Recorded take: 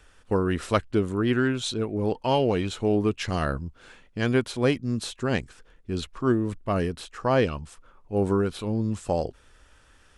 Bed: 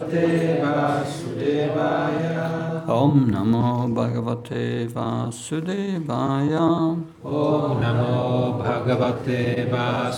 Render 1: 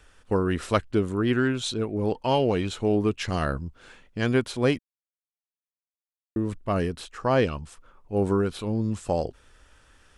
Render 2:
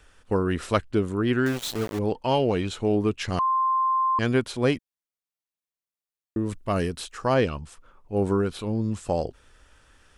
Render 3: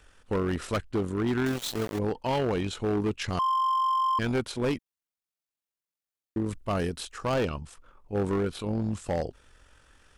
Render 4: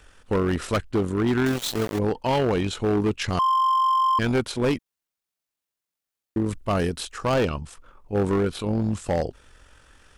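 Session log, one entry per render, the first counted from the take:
4.79–6.36 s: mute
1.46–1.99 s: small samples zeroed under -29.5 dBFS; 3.39–4.19 s: bleep 1.05 kHz -19.5 dBFS; 6.46–7.34 s: treble shelf 3.7 kHz +7.5 dB
AM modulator 45 Hz, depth 25%; hard clipper -22.5 dBFS, distortion -11 dB
trim +5 dB

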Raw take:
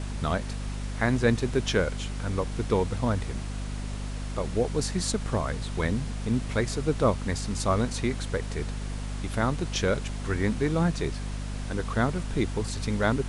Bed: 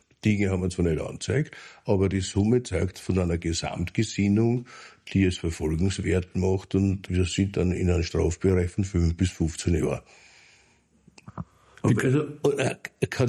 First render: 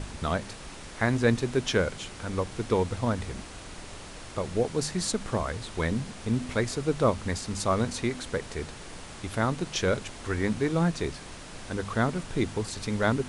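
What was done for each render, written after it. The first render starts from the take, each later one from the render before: de-hum 50 Hz, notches 5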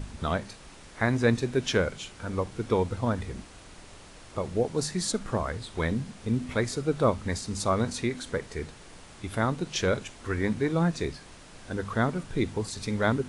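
noise print and reduce 6 dB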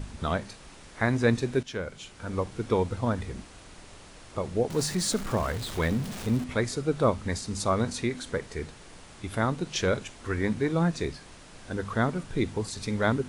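1.63–2.37 s: fade in, from -14 dB; 4.70–6.44 s: jump at every zero crossing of -34.5 dBFS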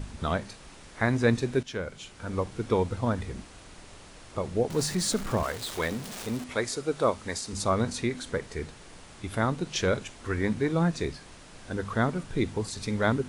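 5.43–7.53 s: tone controls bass -10 dB, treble +3 dB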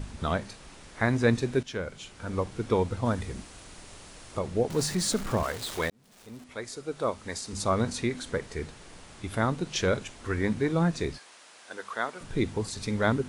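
3.05–4.39 s: treble shelf 5.7 kHz +6.5 dB; 5.90–7.79 s: fade in linear; 11.18–12.21 s: Bessel high-pass 760 Hz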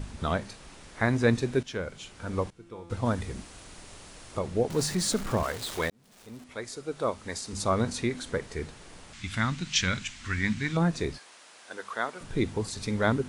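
2.50–2.90 s: feedback comb 170 Hz, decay 1.7 s, mix 90%; 9.13–10.77 s: FFT filter 230 Hz 0 dB, 440 Hz -17 dB, 2.1 kHz +7 dB, 7.6 kHz +5 dB, 13 kHz -14 dB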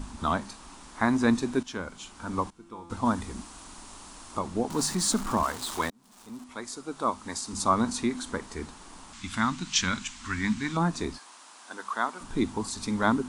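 graphic EQ 125/250/500/1000/2000/8000 Hz -10/+8/-9/+10/-5/+4 dB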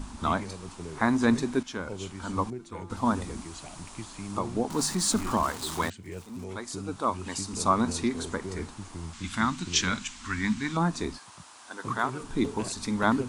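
add bed -16 dB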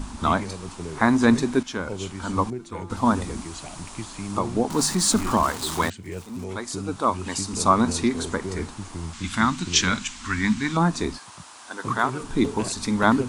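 trim +5.5 dB

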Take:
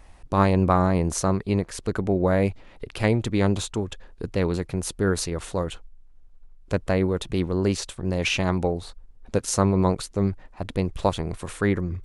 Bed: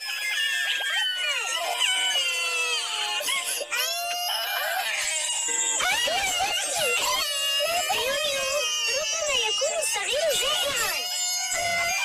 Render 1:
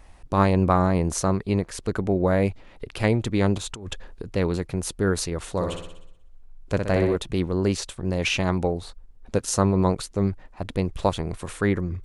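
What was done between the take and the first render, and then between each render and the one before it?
3.58–4.26 s: compressor with a negative ratio -34 dBFS; 5.51–7.16 s: flutter echo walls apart 10.5 m, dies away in 0.71 s; 9.43–9.87 s: band-stop 2.2 kHz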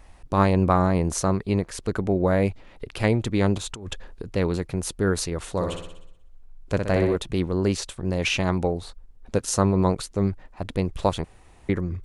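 11.24–11.69 s: room tone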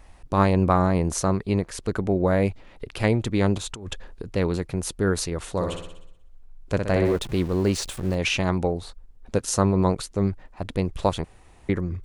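7.05–8.15 s: jump at every zero crossing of -35.5 dBFS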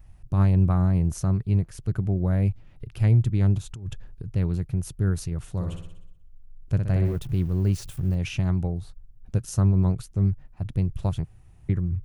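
graphic EQ 125/250/500/1000/2000/4000/8000 Hz +10/-7/-11/-10/-8/-10/-9 dB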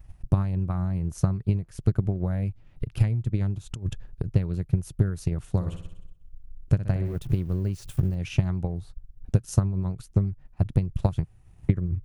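compression 6:1, threshold -24 dBFS, peak gain reduction 9.5 dB; transient shaper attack +9 dB, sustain -4 dB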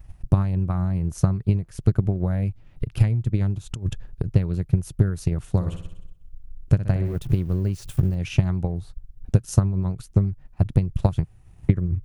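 trim +3.5 dB

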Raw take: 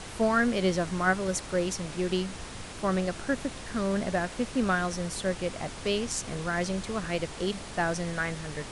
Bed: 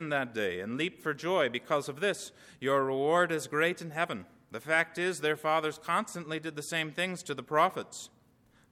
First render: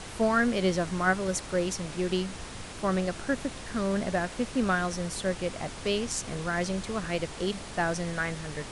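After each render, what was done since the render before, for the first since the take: no audible change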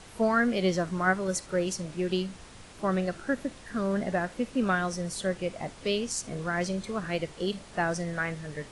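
noise print and reduce 8 dB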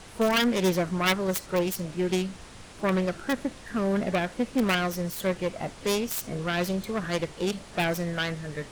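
self-modulated delay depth 0.34 ms; in parallel at -8 dB: integer overflow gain 17.5 dB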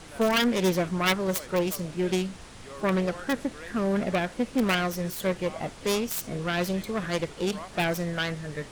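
add bed -16.5 dB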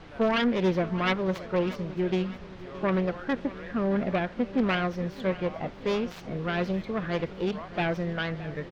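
distance through air 250 m; feedback delay 620 ms, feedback 57%, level -17 dB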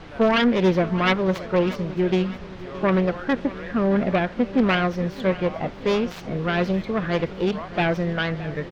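trim +6 dB

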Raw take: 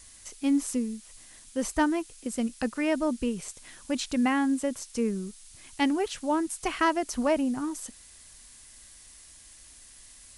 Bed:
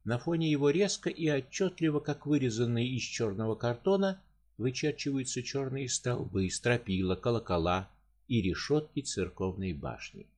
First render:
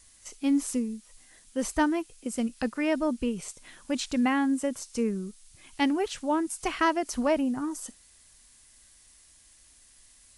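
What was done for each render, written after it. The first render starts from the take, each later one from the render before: noise print and reduce 6 dB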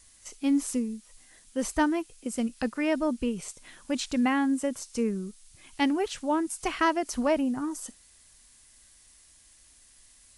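no audible change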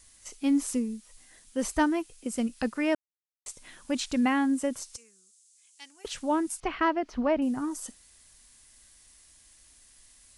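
2.95–3.46 s: mute; 4.96–6.05 s: band-pass filter 7.3 kHz, Q 2.3; 6.60–7.42 s: distance through air 260 m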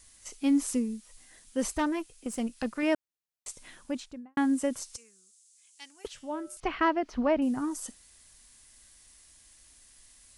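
1.73–2.83 s: valve stage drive 23 dB, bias 0.5; 3.63–4.37 s: studio fade out; 6.07–6.57 s: feedback comb 120 Hz, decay 0.62 s, harmonics odd, mix 70%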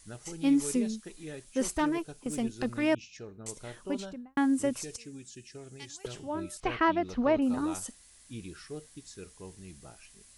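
add bed -13 dB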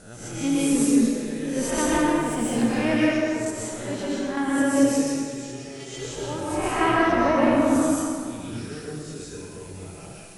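reverse spectral sustain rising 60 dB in 0.57 s; plate-style reverb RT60 2.1 s, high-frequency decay 0.6×, pre-delay 110 ms, DRR -6.5 dB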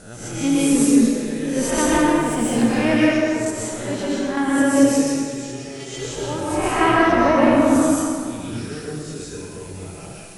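trim +4.5 dB

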